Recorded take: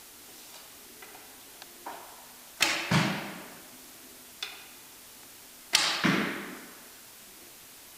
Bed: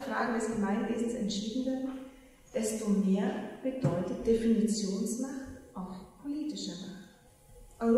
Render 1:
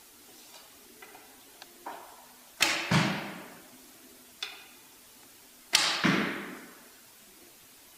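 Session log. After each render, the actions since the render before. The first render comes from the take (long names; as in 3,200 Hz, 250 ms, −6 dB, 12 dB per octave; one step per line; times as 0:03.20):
broadband denoise 6 dB, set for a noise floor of −51 dBFS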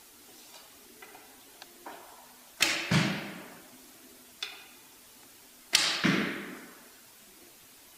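dynamic equaliser 930 Hz, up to −6 dB, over −49 dBFS, Q 1.6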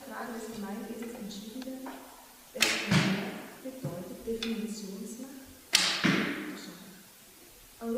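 mix in bed −8 dB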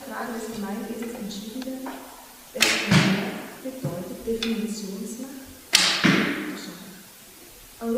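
level +7.5 dB
brickwall limiter −1 dBFS, peak gain reduction 1.5 dB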